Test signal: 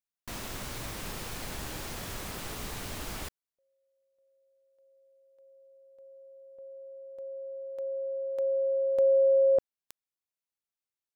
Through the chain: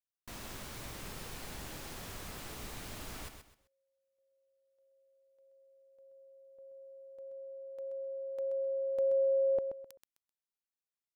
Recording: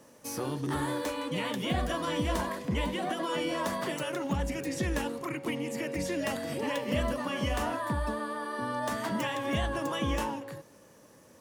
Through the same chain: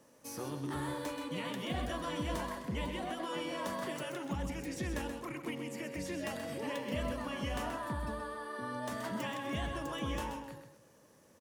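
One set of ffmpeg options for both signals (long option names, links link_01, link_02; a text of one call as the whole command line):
ffmpeg -i in.wav -af "aecho=1:1:129|258|387:0.398|0.111|0.0312,volume=-7dB" out.wav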